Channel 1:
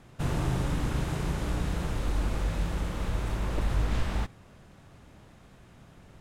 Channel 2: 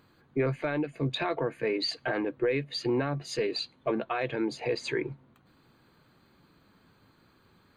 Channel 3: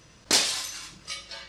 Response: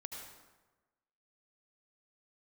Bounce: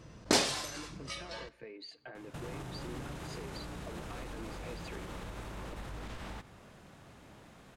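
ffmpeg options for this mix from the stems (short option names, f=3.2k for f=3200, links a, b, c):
-filter_complex "[0:a]lowshelf=f=120:g=-10.5,alimiter=level_in=8dB:limit=-24dB:level=0:latency=1:release=93,volume=-8dB,acompressor=threshold=-47dB:ratio=1.5,adelay=2150,volume=-0.5dB,asplit=2[a][b];[b]volume=-10dB[c];[1:a]acompressor=threshold=-33dB:ratio=6,volume=-13dB,asplit=2[d][e];[e]volume=-17dB[f];[2:a]tiltshelf=f=1.4k:g=7,volume=-3dB,asplit=2[g][h];[h]volume=-15dB[i];[3:a]atrim=start_sample=2205[j];[c][f][i]amix=inputs=3:normalize=0[k];[k][j]afir=irnorm=-1:irlink=0[l];[a][d][g][l]amix=inputs=4:normalize=0"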